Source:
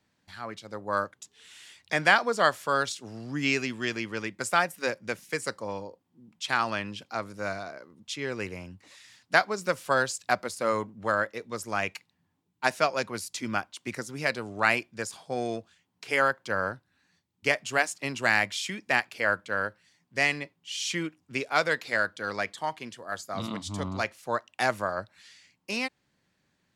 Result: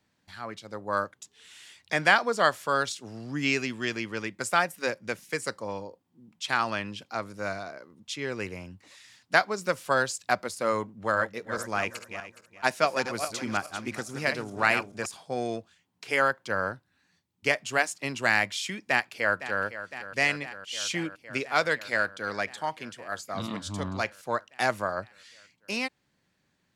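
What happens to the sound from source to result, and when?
10.95–15.06 regenerating reverse delay 0.209 s, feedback 46%, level -8 dB
18.81–19.62 echo throw 0.51 s, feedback 80%, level -13 dB

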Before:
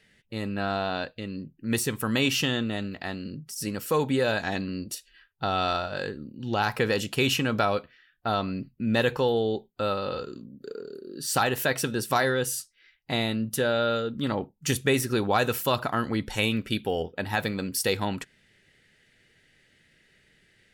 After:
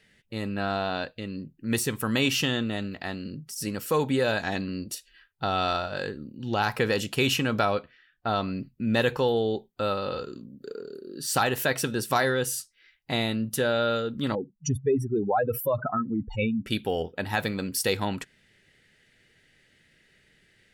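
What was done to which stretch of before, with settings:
7.71–8.36 high shelf 8200 Hz -11 dB
14.35–16.66 spectral contrast raised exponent 3.1

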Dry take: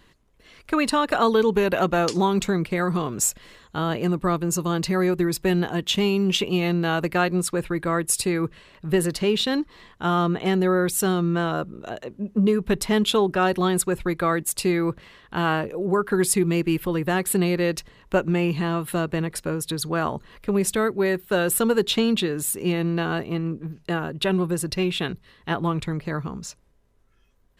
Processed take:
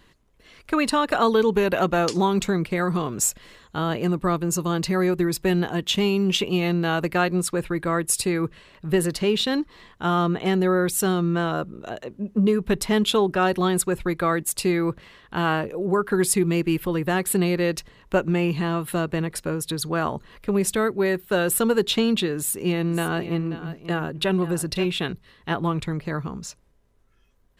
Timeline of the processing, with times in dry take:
22.36–24.86 echo 0.535 s -13 dB

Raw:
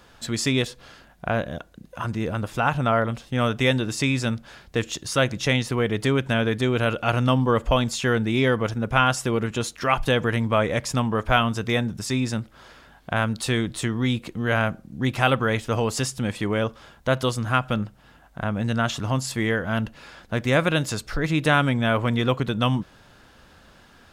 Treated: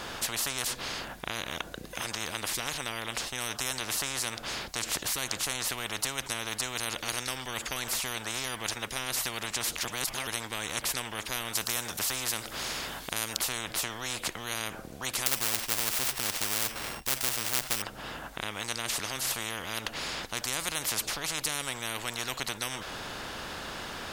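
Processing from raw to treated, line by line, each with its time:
9.85–10.27 reverse
11.55–13.37 high shelf 4000 Hz +9.5 dB
15.26–17.82 sample sorter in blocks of 16 samples
whole clip: spectral compressor 10:1

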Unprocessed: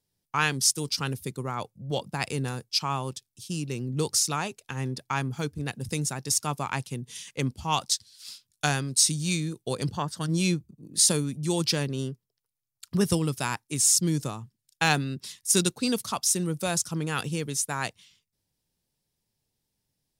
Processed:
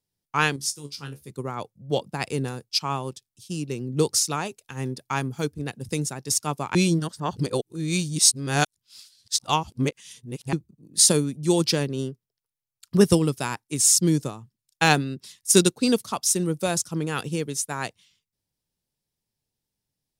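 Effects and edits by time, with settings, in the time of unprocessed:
0.56–1.3 resonator 71 Hz, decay 0.17 s, mix 100%
4.45–5.54 high shelf 7300 Hz +6 dB
6.75–10.53 reverse
whole clip: dynamic EQ 390 Hz, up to +5 dB, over -40 dBFS, Q 0.84; upward expander 1.5:1, over -35 dBFS; gain +5 dB

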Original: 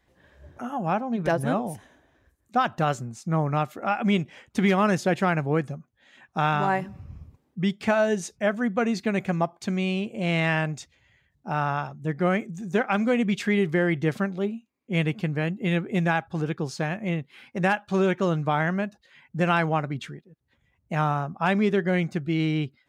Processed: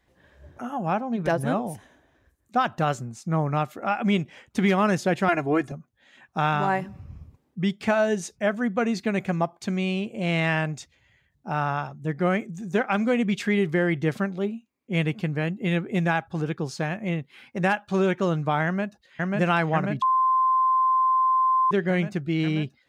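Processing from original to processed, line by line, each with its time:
5.28–5.72 comb 2.9 ms, depth 100%
18.65–19.36 echo throw 0.54 s, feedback 80%, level -0.5 dB
20.02–21.71 bleep 1040 Hz -17.5 dBFS

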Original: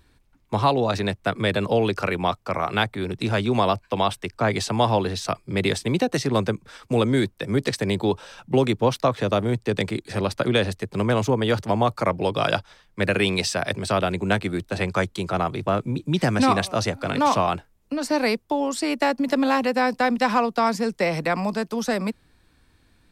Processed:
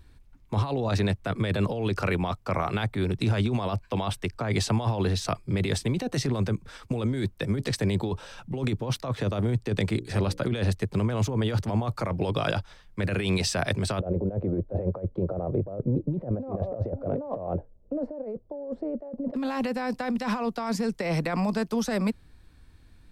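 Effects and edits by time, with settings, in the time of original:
9.88–10.4 notches 60/120/180/240/300/360/420/480/540 Hz
14–19.34 synth low-pass 550 Hz, resonance Q 4.8
whole clip: negative-ratio compressor -24 dBFS, ratio -1; low shelf 130 Hz +11.5 dB; gain -6 dB

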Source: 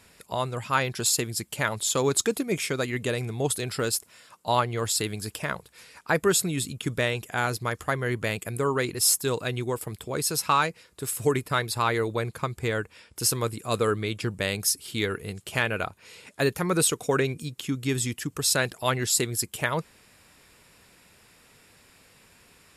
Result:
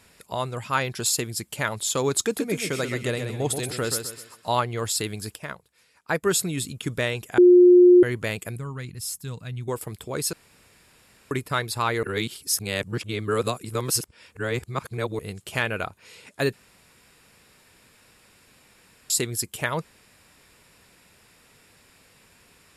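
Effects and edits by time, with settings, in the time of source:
2.24–4.52 feedback echo 0.129 s, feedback 36%, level -7 dB
5.35–6.31 upward expander, over -42 dBFS
7.38–8.03 bleep 357 Hz -9 dBFS
8.56–9.68 EQ curve 180 Hz 0 dB, 360 Hz -17 dB, 1900 Hz -11 dB
10.33–11.31 room tone
12.03–15.19 reverse
16.53–19.1 room tone

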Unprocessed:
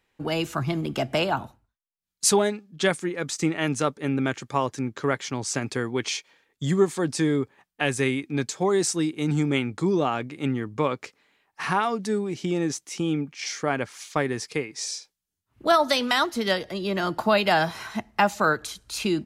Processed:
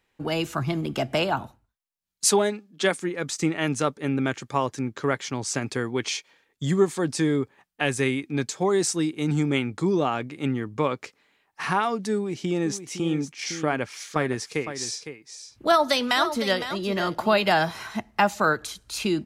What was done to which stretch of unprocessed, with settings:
2.27–2.99 steep high-pass 190 Hz
12.15–17.52 echo 0.509 s -10.5 dB

